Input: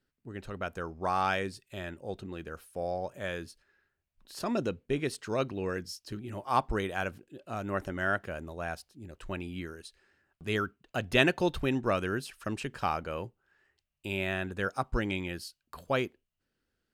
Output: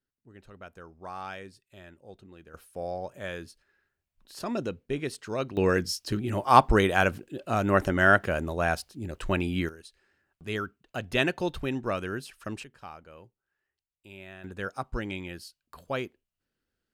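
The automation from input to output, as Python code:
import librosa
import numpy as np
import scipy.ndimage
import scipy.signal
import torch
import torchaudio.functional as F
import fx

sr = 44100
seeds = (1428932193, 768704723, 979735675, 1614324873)

y = fx.gain(x, sr, db=fx.steps((0.0, -10.0), (2.54, -0.5), (5.57, 10.0), (9.69, -1.5), (12.64, -13.5), (14.44, -2.5)))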